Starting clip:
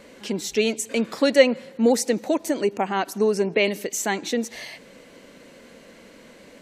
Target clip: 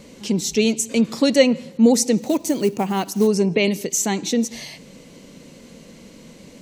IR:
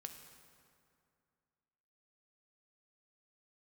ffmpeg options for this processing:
-filter_complex "[0:a]equalizer=frequency=160:width_type=o:width=0.67:gain=4,equalizer=frequency=630:width_type=o:width=0.67:gain=-3,equalizer=frequency=1600:width_type=o:width=0.67:gain=-8,equalizer=frequency=6300:width_type=o:width=0.67:gain=4,asplit=2[link_01][link_02];[1:a]atrim=start_sample=2205,afade=type=out:start_time=0.23:duration=0.01,atrim=end_sample=10584,lowpass=6400[link_03];[link_02][link_03]afir=irnorm=-1:irlink=0,volume=-7dB[link_04];[link_01][link_04]amix=inputs=2:normalize=0,asplit=3[link_05][link_06][link_07];[link_05]afade=type=out:start_time=2.21:duration=0.02[link_08];[link_06]acrusher=bits=6:mode=log:mix=0:aa=0.000001,afade=type=in:start_time=2.21:duration=0.02,afade=type=out:start_time=3.26:duration=0.02[link_09];[link_07]afade=type=in:start_time=3.26:duration=0.02[link_10];[link_08][link_09][link_10]amix=inputs=3:normalize=0,bass=frequency=250:gain=7,treble=frequency=4000:gain=4"

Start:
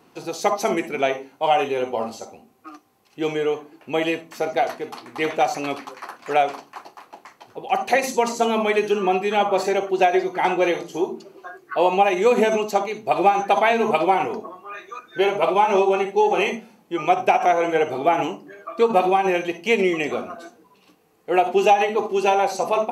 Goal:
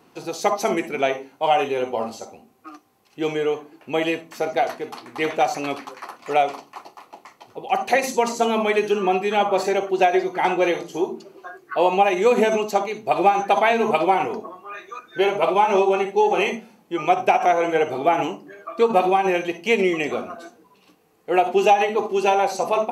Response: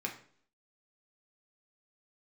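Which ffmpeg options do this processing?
-filter_complex "[0:a]asettb=1/sr,asplit=3[link_01][link_02][link_03];[link_01]atrim=end=6.044[link_04];[link_02]atrim=start=6.04:end=7.72,asetpts=PTS-STARTPTS,afade=type=in:duration=0.004:curve=qsin,afade=type=out:start_time=1.676:duration=0.004:curve=qsin,bandreject=frequency=1600:width=5.6[link_05];[link_03]atrim=start=7.716[link_06];[link_04][link_05]acrossfade=duration=0.004:curve1=hsin:curve2=qsin[link_07];[link_07][link_06]acrossfade=duration=0.004:curve1=qsin:curve2=hsin"

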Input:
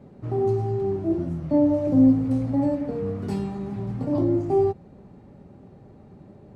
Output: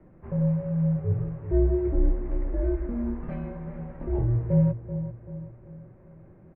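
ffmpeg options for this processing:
ffmpeg -i in.wav -filter_complex "[0:a]highpass=frequency=290:width_type=q:width=0.5412,highpass=frequency=290:width_type=q:width=1.307,lowpass=frequency=2500:width_type=q:width=0.5176,lowpass=frequency=2500:width_type=q:width=0.7071,lowpass=frequency=2500:width_type=q:width=1.932,afreqshift=-230,asplit=2[link_01][link_02];[link_02]adelay=385,lowpass=frequency=1800:poles=1,volume=-11dB,asplit=2[link_03][link_04];[link_04]adelay=385,lowpass=frequency=1800:poles=1,volume=0.48,asplit=2[link_05][link_06];[link_06]adelay=385,lowpass=frequency=1800:poles=1,volume=0.48,asplit=2[link_07][link_08];[link_08]adelay=385,lowpass=frequency=1800:poles=1,volume=0.48,asplit=2[link_09][link_10];[link_10]adelay=385,lowpass=frequency=1800:poles=1,volume=0.48[link_11];[link_01][link_03][link_05][link_07][link_09][link_11]amix=inputs=6:normalize=0" out.wav

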